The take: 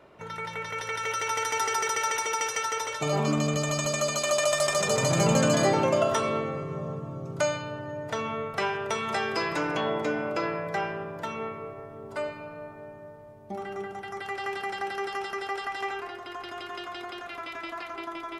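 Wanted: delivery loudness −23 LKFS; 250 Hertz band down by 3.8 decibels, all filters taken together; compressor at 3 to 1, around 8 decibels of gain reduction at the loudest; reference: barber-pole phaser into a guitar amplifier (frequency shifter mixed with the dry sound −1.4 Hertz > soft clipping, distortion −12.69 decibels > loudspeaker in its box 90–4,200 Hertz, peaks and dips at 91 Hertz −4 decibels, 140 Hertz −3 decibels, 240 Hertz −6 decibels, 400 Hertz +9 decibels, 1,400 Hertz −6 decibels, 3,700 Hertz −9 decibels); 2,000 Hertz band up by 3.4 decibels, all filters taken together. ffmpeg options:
ffmpeg -i in.wav -filter_complex "[0:a]equalizer=frequency=250:width_type=o:gain=-6,equalizer=frequency=2000:width_type=o:gain=6,acompressor=threshold=-30dB:ratio=3,asplit=2[link_01][link_02];[link_02]afreqshift=-1.4[link_03];[link_01][link_03]amix=inputs=2:normalize=1,asoftclip=threshold=-33dB,highpass=90,equalizer=frequency=91:width_type=q:width=4:gain=-4,equalizer=frequency=140:width_type=q:width=4:gain=-3,equalizer=frequency=240:width_type=q:width=4:gain=-6,equalizer=frequency=400:width_type=q:width=4:gain=9,equalizer=frequency=1400:width_type=q:width=4:gain=-6,equalizer=frequency=3700:width_type=q:width=4:gain=-9,lowpass=frequency=4200:width=0.5412,lowpass=frequency=4200:width=1.3066,volume=16dB" out.wav

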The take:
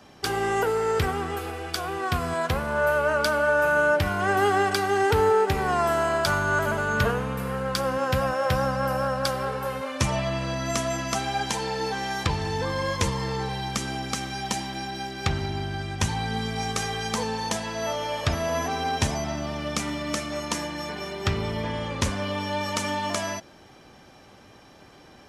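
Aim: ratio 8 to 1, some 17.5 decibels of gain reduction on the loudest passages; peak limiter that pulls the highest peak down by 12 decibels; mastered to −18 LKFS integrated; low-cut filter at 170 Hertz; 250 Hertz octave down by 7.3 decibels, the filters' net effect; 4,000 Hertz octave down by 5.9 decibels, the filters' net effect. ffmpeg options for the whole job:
ffmpeg -i in.wav -af "highpass=170,equalizer=frequency=250:width_type=o:gain=-8.5,equalizer=frequency=4000:width_type=o:gain=-8,acompressor=threshold=-38dB:ratio=8,volume=24dB,alimiter=limit=-9dB:level=0:latency=1" out.wav

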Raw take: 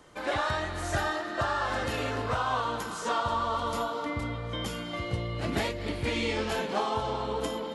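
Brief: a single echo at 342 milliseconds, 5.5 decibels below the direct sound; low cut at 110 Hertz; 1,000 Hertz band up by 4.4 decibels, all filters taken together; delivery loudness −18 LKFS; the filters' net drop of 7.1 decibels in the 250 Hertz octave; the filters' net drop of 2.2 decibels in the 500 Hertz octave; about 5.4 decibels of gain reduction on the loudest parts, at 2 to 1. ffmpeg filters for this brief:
ffmpeg -i in.wav -af "highpass=110,equalizer=frequency=250:width_type=o:gain=-8.5,equalizer=frequency=500:width_type=o:gain=-3,equalizer=frequency=1000:width_type=o:gain=6.5,acompressor=threshold=-31dB:ratio=2,aecho=1:1:342:0.531,volume=13.5dB" out.wav

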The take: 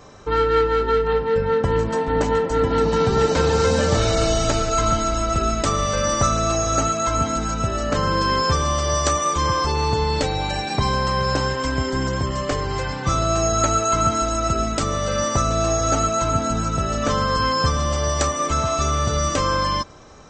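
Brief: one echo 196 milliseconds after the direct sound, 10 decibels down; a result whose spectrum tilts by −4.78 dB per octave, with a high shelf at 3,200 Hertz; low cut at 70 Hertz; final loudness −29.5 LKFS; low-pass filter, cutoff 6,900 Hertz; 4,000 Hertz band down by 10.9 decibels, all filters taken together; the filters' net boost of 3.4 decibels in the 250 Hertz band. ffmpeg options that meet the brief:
ffmpeg -i in.wav -af "highpass=70,lowpass=6900,equalizer=frequency=250:width_type=o:gain=4.5,highshelf=frequency=3200:gain=-6.5,equalizer=frequency=4000:width_type=o:gain=-8.5,aecho=1:1:196:0.316,volume=-9dB" out.wav

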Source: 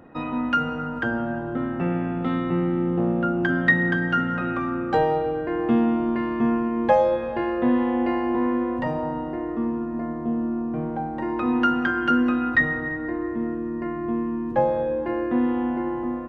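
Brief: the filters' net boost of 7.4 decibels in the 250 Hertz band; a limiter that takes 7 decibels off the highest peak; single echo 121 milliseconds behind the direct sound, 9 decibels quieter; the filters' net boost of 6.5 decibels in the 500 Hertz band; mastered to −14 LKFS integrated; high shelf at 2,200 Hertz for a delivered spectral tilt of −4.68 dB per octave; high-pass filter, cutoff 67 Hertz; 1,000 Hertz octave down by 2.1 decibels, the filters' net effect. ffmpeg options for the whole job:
ffmpeg -i in.wav -af "highpass=67,equalizer=frequency=250:width_type=o:gain=7,equalizer=frequency=500:width_type=o:gain=7,equalizer=frequency=1000:width_type=o:gain=-8,highshelf=frequency=2200:gain=7,alimiter=limit=-9.5dB:level=0:latency=1,aecho=1:1:121:0.355,volume=4.5dB" out.wav

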